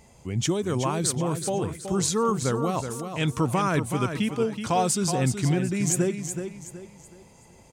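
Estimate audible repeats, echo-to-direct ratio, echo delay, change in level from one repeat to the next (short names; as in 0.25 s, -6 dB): 3, -7.5 dB, 0.374 s, -9.0 dB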